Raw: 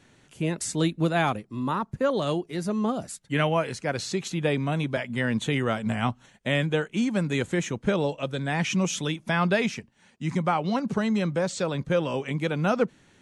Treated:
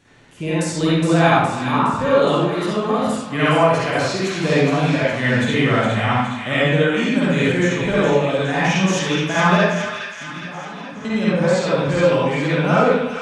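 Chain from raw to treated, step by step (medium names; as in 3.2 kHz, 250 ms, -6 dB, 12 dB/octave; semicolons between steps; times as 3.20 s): 9.57–11.05 s: compression 6:1, threshold -40 dBFS, peak gain reduction 19 dB; feedback echo behind a high-pass 415 ms, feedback 58%, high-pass 1.6 kHz, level -6 dB; reverberation RT60 0.95 s, pre-delay 44 ms, DRR -9.5 dB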